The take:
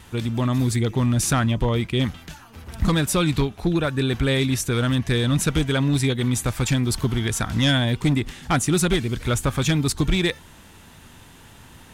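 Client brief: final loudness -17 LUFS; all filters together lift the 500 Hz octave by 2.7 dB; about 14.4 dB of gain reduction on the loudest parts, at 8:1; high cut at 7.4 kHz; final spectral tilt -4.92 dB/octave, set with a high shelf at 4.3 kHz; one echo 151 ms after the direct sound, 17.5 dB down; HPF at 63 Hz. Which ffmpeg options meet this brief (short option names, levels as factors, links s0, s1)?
-af "highpass=63,lowpass=7400,equalizer=f=500:t=o:g=3.5,highshelf=f=4300:g=3.5,acompressor=threshold=0.0282:ratio=8,aecho=1:1:151:0.133,volume=7.5"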